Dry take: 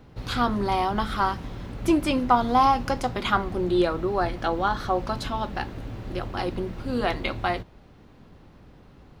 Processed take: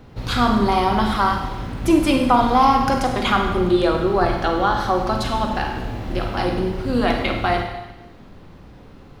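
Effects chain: in parallel at -1 dB: limiter -16.5 dBFS, peak gain reduction 10 dB; 5.45–6.37 on the sum: flutter echo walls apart 9.1 m, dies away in 0.46 s; reverb RT60 1.1 s, pre-delay 33 ms, DRR 3 dB

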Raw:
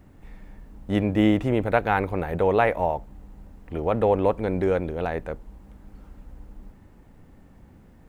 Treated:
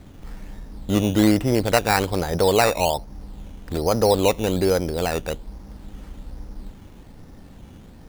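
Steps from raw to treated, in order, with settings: in parallel at -0.5 dB: compressor, threshold -34 dBFS, peak gain reduction 18 dB; on the sum: decimation with a swept rate 11×, swing 60% 1.2 Hz; gain +1.5 dB

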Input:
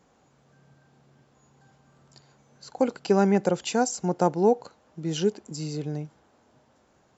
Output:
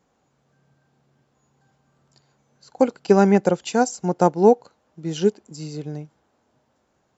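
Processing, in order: upward expander 1.5:1, over -40 dBFS; gain +7 dB

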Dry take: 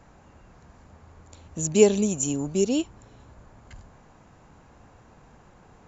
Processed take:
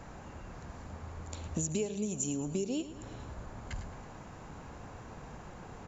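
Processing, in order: compressor 16:1, threshold -36 dBFS, peak gain reduction 26 dB; on a send: feedback echo 0.109 s, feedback 53%, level -13.5 dB; on the sum: gain +5.5 dB

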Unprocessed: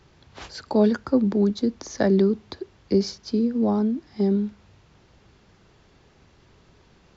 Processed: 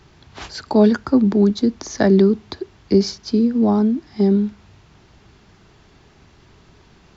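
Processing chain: bell 520 Hz -8 dB 0.21 oct; gain +6 dB

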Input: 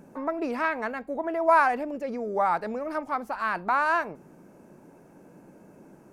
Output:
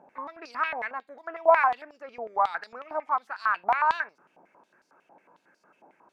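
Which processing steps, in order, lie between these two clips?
stepped band-pass 11 Hz 780–4700 Hz; gain +8 dB

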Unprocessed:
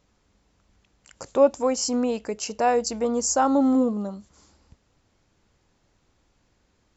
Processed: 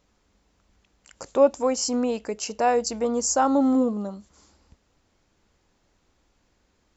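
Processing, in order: bell 120 Hz -5.5 dB 0.79 oct

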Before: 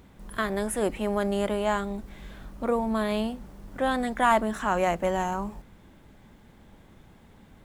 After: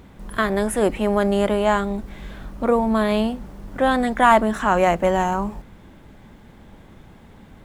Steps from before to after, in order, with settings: high shelf 4400 Hz -4.5 dB; gain +7.5 dB

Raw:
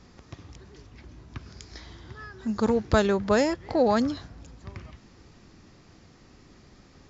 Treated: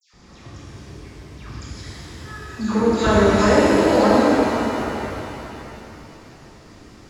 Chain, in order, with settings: dispersion lows, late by 0.136 s, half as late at 2100 Hz; shimmer reverb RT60 3.2 s, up +7 st, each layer -8 dB, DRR -7.5 dB

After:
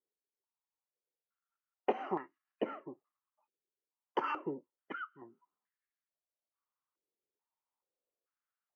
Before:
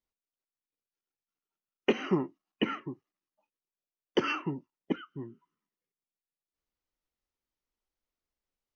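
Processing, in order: stepped band-pass 2.3 Hz 410–1700 Hz; gain +7.5 dB

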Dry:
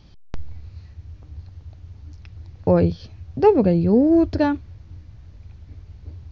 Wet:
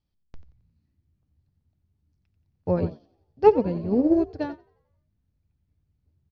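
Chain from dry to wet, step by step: frequency-shifting echo 89 ms, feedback 53%, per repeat +55 Hz, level -10 dB; upward expander 2.5:1, over -30 dBFS

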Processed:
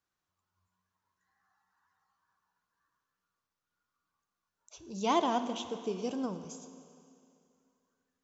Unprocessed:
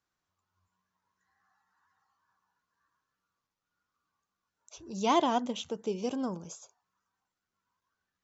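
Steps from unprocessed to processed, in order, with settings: Schroeder reverb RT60 2.5 s, DRR 10 dB; gain -2.5 dB

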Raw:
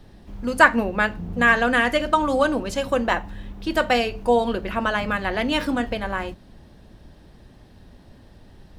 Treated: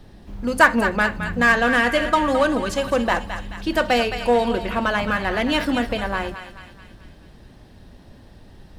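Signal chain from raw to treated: thinning echo 0.216 s, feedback 57%, high-pass 920 Hz, level -9 dB; in parallel at -11 dB: wavefolder -18 dBFS

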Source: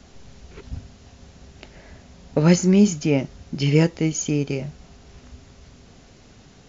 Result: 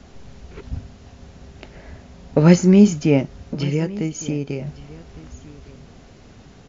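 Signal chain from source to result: high shelf 3300 Hz -7.5 dB; 3.21–4.67 compressor 2:1, threshold -29 dBFS, peak gain reduction 9.5 dB; echo 1.16 s -19.5 dB; gain +4 dB

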